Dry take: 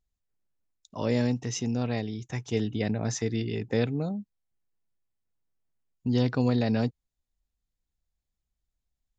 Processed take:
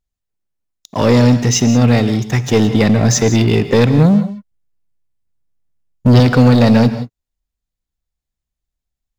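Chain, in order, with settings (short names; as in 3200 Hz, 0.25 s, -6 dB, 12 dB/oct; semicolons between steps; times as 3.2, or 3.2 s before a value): 3.98–6.2 low shelf 170 Hz +11 dB; sample leveller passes 3; non-linear reverb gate 0.2 s rising, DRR 11 dB; gain +7.5 dB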